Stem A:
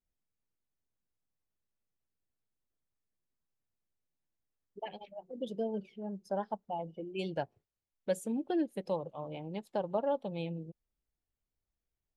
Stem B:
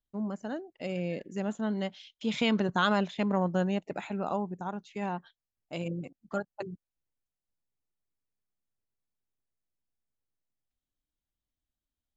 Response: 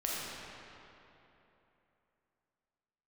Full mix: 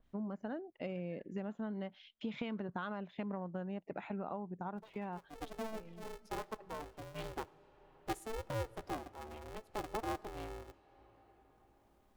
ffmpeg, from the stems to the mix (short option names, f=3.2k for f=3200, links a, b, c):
-filter_complex "[0:a]aeval=exprs='val(0)*sgn(sin(2*PI*220*n/s))':c=same,volume=-7.5dB,afade=t=in:st=5.06:d=0.31:silence=0.281838,asplit=3[a][b][c];[b]volume=-23.5dB[d];[1:a]lowpass=2.6k,acompressor=threshold=-36dB:ratio=8,volume=-1dB[e];[c]apad=whole_len=536379[f];[e][f]sidechaincompress=threshold=-54dB:ratio=8:attack=16:release=1100[g];[2:a]atrim=start_sample=2205[h];[d][h]afir=irnorm=-1:irlink=0[i];[a][g][i]amix=inputs=3:normalize=0,acompressor=mode=upward:threshold=-54dB:ratio=2.5,adynamicequalizer=threshold=0.00158:dfrequency=2200:dqfactor=0.7:tfrequency=2200:tqfactor=0.7:attack=5:release=100:ratio=0.375:range=3:mode=cutabove:tftype=highshelf"